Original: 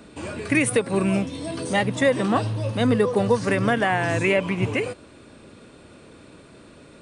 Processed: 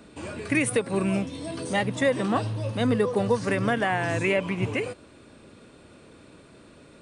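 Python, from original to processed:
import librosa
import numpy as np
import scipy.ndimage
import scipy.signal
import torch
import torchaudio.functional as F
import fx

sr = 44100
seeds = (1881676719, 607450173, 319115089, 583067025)

y = x * 10.0 ** (-3.5 / 20.0)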